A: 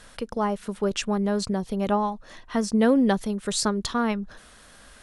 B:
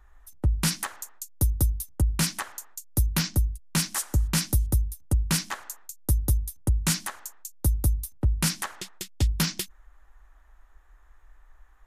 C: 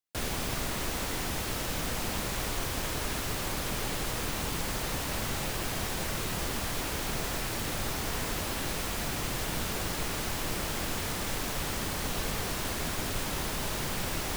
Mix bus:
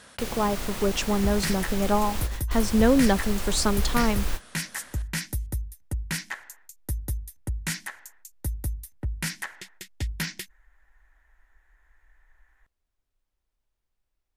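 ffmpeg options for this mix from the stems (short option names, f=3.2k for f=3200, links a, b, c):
-filter_complex "[0:a]highpass=92,volume=0dB,asplit=2[a][b];[1:a]equalizer=f=1.9k:w=1.9:g=11.5,bandreject=f=1.2k:w=6.5,adelay=800,volume=-7dB[c];[2:a]asubboost=boost=7:cutoff=56,volume=-1.5dB[d];[b]apad=whole_len=633622[e];[d][e]sidechaingate=range=-54dB:threshold=-44dB:ratio=16:detection=peak[f];[a][c][f]amix=inputs=3:normalize=0"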